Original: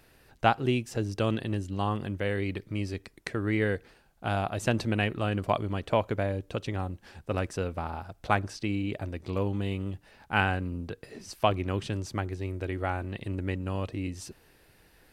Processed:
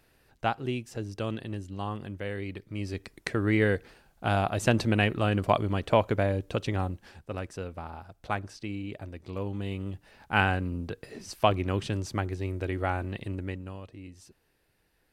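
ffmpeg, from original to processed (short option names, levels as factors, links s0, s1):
-af "volume=3.16,afade=t=in:st=2.7:d=0.43:silence=0.398107,afade=t=out:st=6.85:d=0.43:silence=0.375837,afade=t=in:st=9.32:d=1.11:silence=0.446684,afade=t=out:st=13.07:d=0.74:silence=0.223872"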